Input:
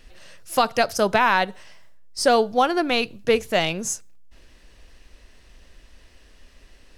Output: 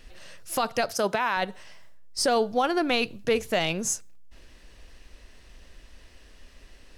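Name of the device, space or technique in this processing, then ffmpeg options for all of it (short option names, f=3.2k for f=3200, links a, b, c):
stacked limiters: -filter_complex "[0:a]asettb=1/sr,asplit=3[a][b][c];[a]atrim=end=0.924[d];[b]atrim=start=0.92:end=1.37,asetpts=PTS-STARTPTS,afade=t=in:d=0.004:c=qsin,afade=t=out:st=0.446:d=0.004:c=qsin,highpass=f=220:p=1[e];[c]atrim=start=1.366[f];[d][e]acrossfade=d=0.004:c1=hsin:c2=qsin[g];[g][f]acrossfade=d=0.004:c1=qsin:c2=hsin,alimiter=limit=-10dB:level=0:latency=1:release=468,alimiter=limit=-14.5dB:level=0:latency=1:release=15"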